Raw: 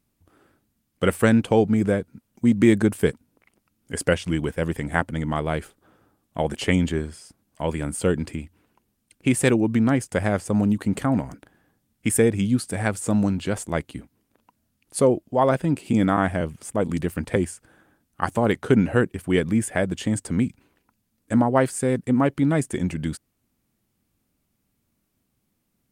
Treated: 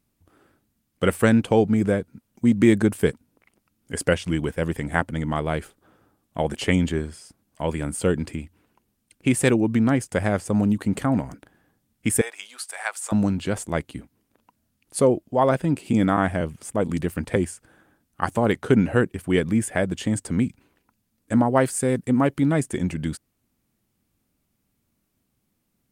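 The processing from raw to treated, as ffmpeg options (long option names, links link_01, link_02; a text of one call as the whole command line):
ffmpeg -i in.wav -filter_complex "[0:a]asettb=1/sr,asplit=3[link_01][link_02][link_03];[link_01]atrim=end=12.214[link_04];[link_02]atrim=start=12.21:end=13.12,asetpts=PTS-STARTPTS,afade=type=in:duration=0.004:curve=qsin,afade=type=out:start_time=0.906:duration=0.004:curve=qsin,highpass=frequency=780:width=0.5412,highpass=frequency=780:width=1.3066[link_05];[link_03]atrim=start=13.116[link_06];[link_04][link_05]acrossfade=duration=0.004:curve1=hsin:curve2=qsin[link_07];[link_07][link_06]acrossfade=duration=0.004:curve1=qsin:curve2=hsin,asettb=1/sr,asplit=3[link_08][link_09][link_10];[link_08]atrim=end=21.454[link_11];[link_09]atrim=start=21.45:end=22.48,asetpts=PTS-STARTPTS,afade=type=in:duration=0.004:curve=qsin,afade=type=out:start_time=1.026:duration=0.004:curve=qsin,highshelf=frequency=6600:gain=5[link_12];[link_10]atrim=start=22.476[link_13];[link_11][link_12]acrossfade=duration=0.004:curve1=hsin:curve2=qsin[link_14];[link_14][link_13]acrossfade=duration=0.004:curve1=qsin:curve2=hsin" out.wav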